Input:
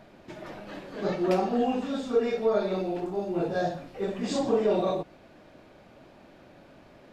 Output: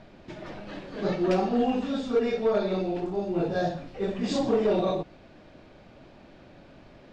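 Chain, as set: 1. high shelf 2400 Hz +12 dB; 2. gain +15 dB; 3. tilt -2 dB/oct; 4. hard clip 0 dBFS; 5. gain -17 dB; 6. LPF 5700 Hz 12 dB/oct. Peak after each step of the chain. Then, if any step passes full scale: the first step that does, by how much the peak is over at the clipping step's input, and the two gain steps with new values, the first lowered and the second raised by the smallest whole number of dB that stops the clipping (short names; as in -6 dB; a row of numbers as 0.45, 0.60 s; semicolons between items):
-11.5, +3.5, +5.5, 0.0, -17.0, -17.0 dBFS; step 2, 5.5 dB; step 2 +9 dB, step 5 -11 dB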